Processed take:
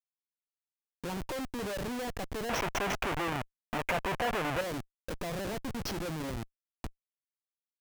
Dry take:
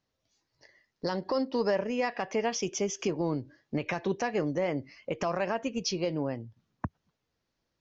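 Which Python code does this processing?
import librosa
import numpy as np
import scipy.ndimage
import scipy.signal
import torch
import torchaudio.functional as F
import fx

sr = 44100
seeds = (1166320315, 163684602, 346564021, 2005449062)

y = fx.high_shelf(x, sr, hz=3300.0, db=-5.5)
y = fx.schmitt(y, sr, flips_db=-36.5)
y = fx.band_shelf(y, sr, hz=1300.0, db=9.5, octaves=2.8, at=(2.49, 4.61))
y = y * 10.0 ** (-2.5 / 20.0)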